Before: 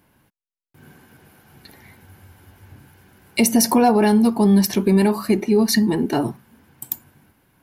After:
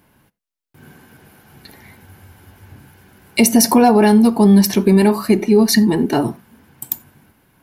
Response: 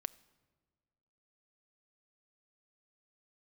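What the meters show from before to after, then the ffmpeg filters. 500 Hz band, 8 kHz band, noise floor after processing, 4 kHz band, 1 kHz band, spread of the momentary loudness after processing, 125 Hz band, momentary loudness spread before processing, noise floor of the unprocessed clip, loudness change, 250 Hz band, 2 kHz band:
+4.0 dB, +4.0 dB, -81 dBFS, +4.0 dB, +3.5 dB, 14 LU, +4.0 dB, 14 LU, under -85 dBFS, +4.0 dB, +4.5 dB, +4.0 dB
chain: -filter_complex "[1:a]atrim=start_sample=2205,atrim=end_sample=4410[s0];[0:a][s0]afir=irnorm=-1:irlink=0,volume=2"

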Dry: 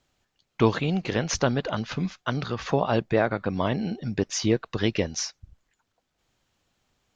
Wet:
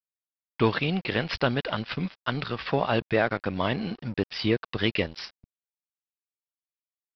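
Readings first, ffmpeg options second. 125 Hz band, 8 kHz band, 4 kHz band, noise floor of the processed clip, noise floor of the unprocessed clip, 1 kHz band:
-2.5 dB, under -20 dB, +1.5 dB, under -85 dBFS, -78 dBFS, -0.5 dB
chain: -af "adynamicequalizer=threshold=0.00631:dfrequency=2500:dqfactor=0.73:tfrequency=2500:tqfactor=0.73:attack=5:release=100:ratio=0.375:range=3.5:mode=boostabove:tftype=bell,acontrast=57,aresample=11025,aeval=exprs='sgn(val(0))*max(abs(val(0))-0.0211,0)':c=same,aresample=44100,volume=0.447"

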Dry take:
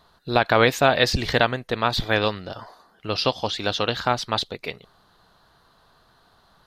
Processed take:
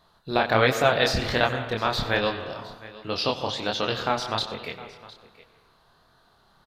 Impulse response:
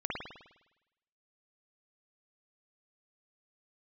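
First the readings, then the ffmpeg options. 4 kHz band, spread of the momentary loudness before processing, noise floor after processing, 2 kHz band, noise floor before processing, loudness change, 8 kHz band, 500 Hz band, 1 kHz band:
-2.5 dB, 17 LU, -61 dBFS, -2.5 dB, -60 dBFS, -2.5 dB, -3.0 dB, -2.5 dB, -2.5 dB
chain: -filter_complex "[0:a]aecho=1:1:711:0.112,asplit=2[s0][s1];[1:a]atrim=start_sample=2205,adelay=94[s2];[s1][s2]afir=irnorm=-1:irlink=0,volume=0.178[s3];[s0][s3]amix=inputs=2:normalize=0,flanger=delay=22.5:depth=7.9:speed=1.3"

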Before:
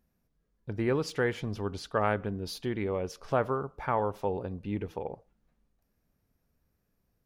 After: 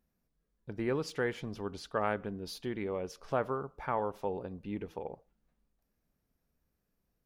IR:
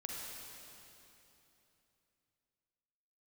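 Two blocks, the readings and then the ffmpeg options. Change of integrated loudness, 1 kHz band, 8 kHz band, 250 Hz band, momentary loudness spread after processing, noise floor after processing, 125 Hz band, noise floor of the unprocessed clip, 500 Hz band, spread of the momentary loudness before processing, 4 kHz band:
-4.5 dB, -4.0 dB, -4.0 dB, -4.0 dB, 9 LU, -82 dBFS, -7.5 dB, -77 dBFS, -4.0 dB, 9 LU, -4.0 dB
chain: -af "equalizer=f=100:w=2.7:g=-6.5,volume=0.631"

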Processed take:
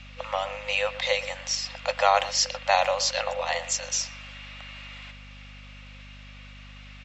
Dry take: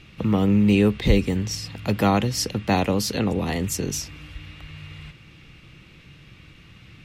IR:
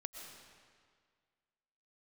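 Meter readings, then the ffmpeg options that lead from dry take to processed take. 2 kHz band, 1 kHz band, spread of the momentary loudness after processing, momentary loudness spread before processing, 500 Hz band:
+3.0 dB, +3.0 dB, 21 LU, 22 LU, -2.0 dB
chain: -filter_complex "[0:a]afftfilt=real='re*between(b*sr/4096,500,7800)':imag='im*between(b*sr/4096,500,7800)':win_size=4096:overlap=0.75,aeval=exprs='val(0)+0.00398*(sin(2*PI*50*n/s)+sin(2*PI*2*50*n/s)/2+sin(2*PI*3*50*n/s)/3+sin(2*PI*4*50*n/s)/4+sin(2*PI*5*50*n/s)/5)':c=same,asplit=2[s0][s1];[s1]adelay=120,highpass=300,lowpass=3400,asoftclip=type=hard:threshold=0.126,volume=0.2[s2];[s0][s2]amix=inputs=2:normalize=0,volume=1.41"

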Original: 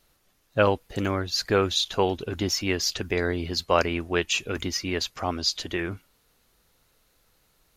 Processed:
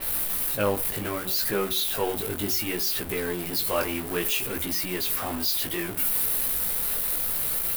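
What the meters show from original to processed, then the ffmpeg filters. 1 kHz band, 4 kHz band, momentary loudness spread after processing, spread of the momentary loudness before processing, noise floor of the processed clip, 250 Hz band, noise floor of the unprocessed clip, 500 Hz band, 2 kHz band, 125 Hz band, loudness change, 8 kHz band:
-4.0 dB, -2.5 dB, 5 LU, 6 LU, -33 dBFS, -3.0 dB, -67 dBFS, -3.5 dB, -2.5 dB, -5.5 dB, +1.0 dB, +5.0 dB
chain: -af "aeval=exprs='val(0)+0.5*0.075*sgn(val(0))':c=same,equalizer=f=81:w=1.2:g=-5.5,bandreject=f=47.2:t=h:w=4,bandreject=f=94.4:t=h:w=4,bandreject=f=141.6:t=h:w=4,bandreject=f=188.8:t=h:w=4,bandreject=f=236:t=h:w=4,bandreject=f=283.2:t=h:w=4,bandreject=f=330.4:t=h:w=4,bandreject=f=377.6:t=h:w=4,bandreject=f=424.8:t=h:w=4,bandreject=f=472:t=h:w=4,bandreject=f=519.2:t=h:w=4,bandreject=f=566.4:t=h:w=4,bandreject=f=613.6:t=h:w=4,bandreject=f=660.8:t=h:w=4,bandreject=f=708:t=h:w=4,bandreject=f=755.2:t=h:w=4,bandreject=f=802.4:t=h:w=4,bandreject=f=849.6:t=h:w=4,bandreject=f=896.8:t=h:w=4,bandreject=f=944:t=h:w=4,bandreject=f=991.2:t=h:w=4,bandreject=f=1038.4:t=h:w=4,bandreject=f=1085.6:t=h:w=4,bandreject=f=1132.8:t=h:w=4,bandreject=f=1180:t=h:w=4,bandreject=f=1227.2:t=h:w=4,bandreject=f=1274.4:t=h:w=4,bandreject=f=1321.6:t=h:w=4,bandreject=f=1368.8:t=h:w=4,bandreject=f=1416:t=h:w=4,bandreject=f=1463.2:t=h:w=4,aexciter=amount=6.6:drive=4.9:freq=8900,flanger=delay=15:depth=5.1:speed=0.65,adynamicequalizer=threshold=0.0178:dfrequency=4800:dqfactor=0.7:tfrequency=4800:tqfactor=0.7:attack=5:release=100:ratio=0.375:range=2:mode=cutabove:tftype=highshelf,volume=0.668"

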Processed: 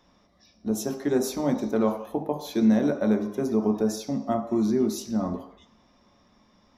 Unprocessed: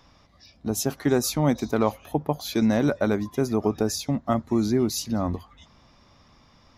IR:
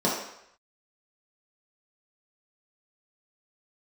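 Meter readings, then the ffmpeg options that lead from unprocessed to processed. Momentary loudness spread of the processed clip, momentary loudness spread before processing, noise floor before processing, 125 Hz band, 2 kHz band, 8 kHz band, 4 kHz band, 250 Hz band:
8 LU, 6 LU, -58 dBFS, -6.5 dB, -6.0 dB, -6.5 dB, -7.0 dB, +0.5 dB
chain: -filter_complex "[0:a]asplit=2[s0][s1];[1:a]atrim=start_sample=2205,afade=t=out:st=0.39:d=0.01,atrim=end_sample=17640[s2];[s1][s2]afir=irnorm=-1:irlink=0,volume=0.168[s3];[s0][s3]amix=inputs=2:normalize=0,volume=0.398"

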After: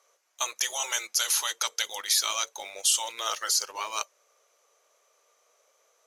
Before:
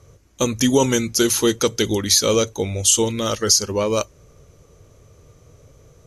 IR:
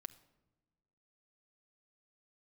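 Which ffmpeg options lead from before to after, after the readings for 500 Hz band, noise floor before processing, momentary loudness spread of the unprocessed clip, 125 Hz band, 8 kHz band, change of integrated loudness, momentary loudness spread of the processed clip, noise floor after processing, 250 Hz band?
-23.5 dB, -52 dBFS, 8 LU, under -40 dB, -7.0 dB, -8.5 dB, 9 LU, -69 dBFS, under -35 dB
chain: -filter_complex "[0:a]afftfilt=real='re*lt(hypot(re,im),0.447)':imag='im*lt(hypot(re,im),0.447)':win_size=1024:overlap=0.75,highpass=f=650:w=0.5412,highpass=f=650:w=1.3066,asplit=2[s0][s1];[s1]acrusher=bits=5:mix=0:aa=0.5,volume=0.473[s2];[s0][s2]amix=inputs=2:normalize=0,volume=0.447"

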